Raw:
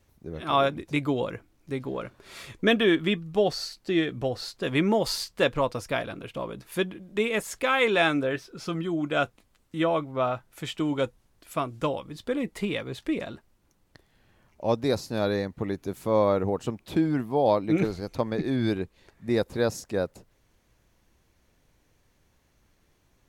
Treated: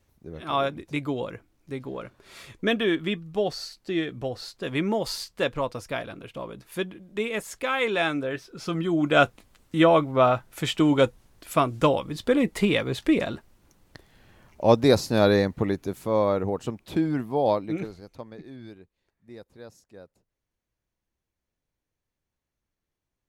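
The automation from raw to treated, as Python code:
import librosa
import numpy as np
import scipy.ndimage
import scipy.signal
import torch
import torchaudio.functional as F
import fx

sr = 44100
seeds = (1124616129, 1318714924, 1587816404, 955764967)

y = fx.gain(x, sr, db=fx.line((8.27, -2.5), (9.2, 7.0), (15.5, 7.0), (16.07, -0.5), (17.51, -0.5), (17.87, -9.0), (18.82, -19.5)))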